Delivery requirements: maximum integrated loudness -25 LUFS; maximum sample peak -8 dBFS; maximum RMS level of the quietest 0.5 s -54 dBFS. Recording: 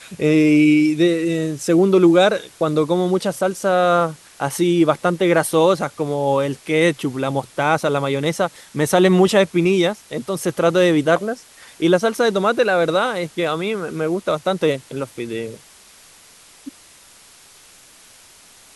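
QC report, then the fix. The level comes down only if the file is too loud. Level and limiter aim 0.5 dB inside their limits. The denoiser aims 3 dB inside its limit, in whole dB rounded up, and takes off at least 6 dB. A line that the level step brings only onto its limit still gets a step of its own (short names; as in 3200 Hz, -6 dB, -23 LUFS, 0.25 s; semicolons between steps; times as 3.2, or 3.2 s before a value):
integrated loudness -18.0 LUFS: fail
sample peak -2.0 dBFS: fail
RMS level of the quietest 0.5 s -47 dBFS: fail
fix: gain -7.5 dB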